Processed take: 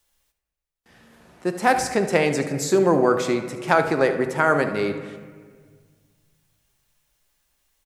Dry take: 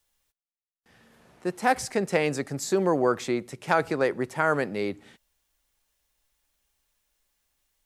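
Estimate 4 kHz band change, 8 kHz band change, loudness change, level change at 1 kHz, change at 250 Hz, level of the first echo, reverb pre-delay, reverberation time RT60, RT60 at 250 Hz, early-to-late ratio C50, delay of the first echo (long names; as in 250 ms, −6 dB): +5.0 dB, +5.0 dB, +5.5 dB, +5.0 dB, +5.5 dB, −13.5 dB, 3 ms, 1.7 s, 2.3 s, 8.0 dB, 75 ms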